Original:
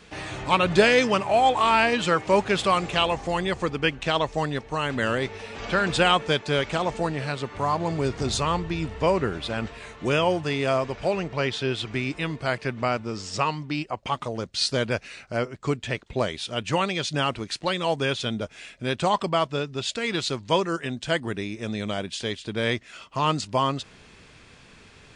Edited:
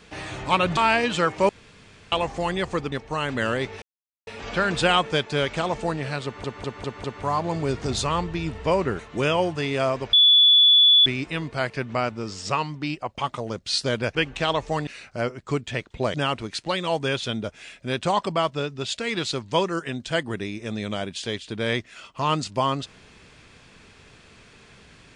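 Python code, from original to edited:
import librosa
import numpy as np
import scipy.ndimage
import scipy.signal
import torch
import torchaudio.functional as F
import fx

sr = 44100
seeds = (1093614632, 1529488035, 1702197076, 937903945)

y = fx.edit(x, sr, fx.cut(start_s=0.77, length_s=0.89),
    fx.room_tone_fill(start_s=2.38, length_s=0.63),
    fx.move(start_s=3.81, length_s=0.72, to_s=15.03),
    fx.insert_silence(at_s=5.43, length_s=0.45),
    fx.stutter(start_s=7.4, slice_s=0.2, count=5),
    fx.cut(start_s=9.35, length_s=0.52),
    fx.bleep(start_s=11.01, length_s=0.93, hz=3440.0, db=-11.5),
    fx.cut(start_s=16.3, length_s=0.81), tone=tone)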